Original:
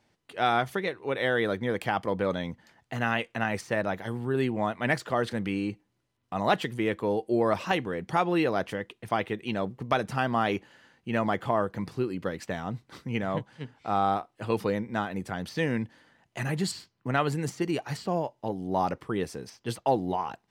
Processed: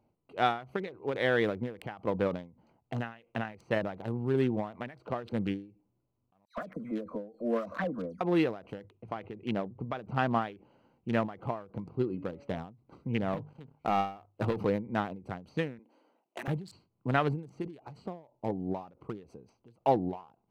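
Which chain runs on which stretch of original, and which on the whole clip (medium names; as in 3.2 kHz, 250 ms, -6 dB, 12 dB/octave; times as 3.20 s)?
6.45–8.21 s: upward compressor, threshold -26 dBFS + static phaser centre 570 Hz, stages 8 + phase dispersion lows, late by 126 ms, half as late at 2.2 kHz
8.76–10.42 s: distance through air 78 m + hum notches 50/100/150 Hz
11.89–12.58 s: de-hum 141.6 Hz, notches 28 + level-controlled noise filter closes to 2.3 kHz, open at -24 dBFS
13.33–14.65 s: hum notches 50/100/150 Hz + waveshaping leveller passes 2 + compression 4:1, threshold -23 dBFS
15.79–16.48 s: high-pass 290 Hz 24 dB/octave + treble shelf 4.5 kHz +8.5 dB
whole clip: local Wiener filter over 25 samples; dynamic bell 8.4 kHz, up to -6 dB, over -55 dBFS, Q 0.75; endings held to a fixed fall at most 140 dB/s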